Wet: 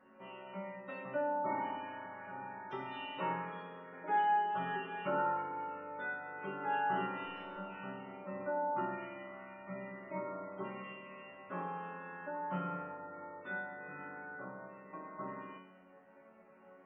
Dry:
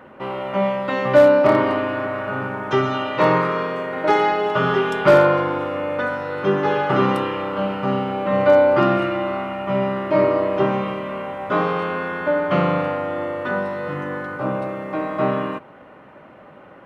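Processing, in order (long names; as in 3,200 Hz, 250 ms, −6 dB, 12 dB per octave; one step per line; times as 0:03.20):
0:07.02–0:07.65: hold until the input has moved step −29 dBFS
gate on every frequency bin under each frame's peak −25 dB strong
resonators tuned to a chord F#3 minor, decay 0.75 s
level +4.5 dB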